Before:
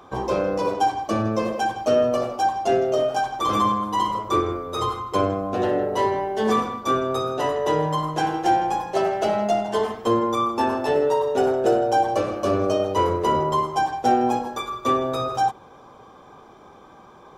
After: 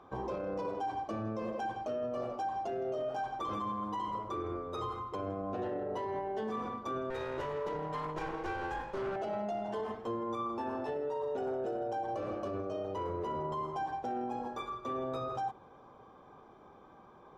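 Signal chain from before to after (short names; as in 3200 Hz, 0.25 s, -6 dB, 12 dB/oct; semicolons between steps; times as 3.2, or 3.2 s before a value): 7.1–9.16 minimum comb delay 2.1 ms; LPF 1900 Hz 6 dB/oct; limiter -20.5 dBFS, peak gain reduction 11 dB; gain -8.5 dB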